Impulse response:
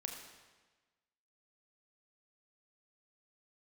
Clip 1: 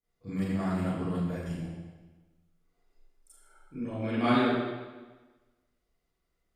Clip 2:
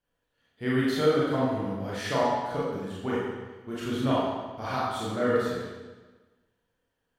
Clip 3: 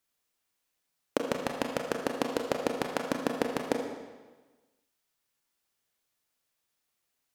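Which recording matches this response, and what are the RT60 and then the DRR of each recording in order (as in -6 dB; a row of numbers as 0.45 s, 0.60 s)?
3; 1.3 s, 1.3 s, 1.3 s; -15.0 dB, -8.0 dB, 2.0 dB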